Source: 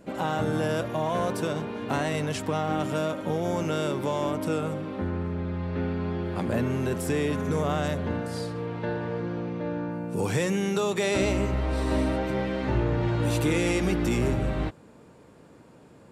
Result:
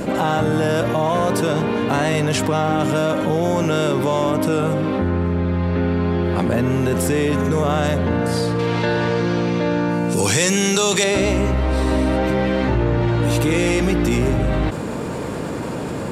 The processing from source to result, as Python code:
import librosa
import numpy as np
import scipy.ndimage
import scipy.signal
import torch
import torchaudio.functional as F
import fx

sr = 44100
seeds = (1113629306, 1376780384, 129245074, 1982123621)

y = fx.peak_eq(x, sr, hz=6200.0, db=14.0, octaves=2.5, at=(8.59, 11.04))
y = fx.env_flatten(y, sr, amount_pct=70)
y = y * librosa.db_to_amplitude(4.5)